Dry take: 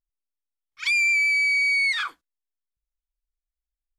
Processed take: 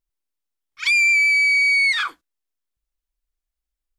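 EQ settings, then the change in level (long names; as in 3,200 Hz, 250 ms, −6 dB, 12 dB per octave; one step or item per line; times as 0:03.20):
parametric band 330 Hz +3.5 dB 0.68 octaves
+4.5 dB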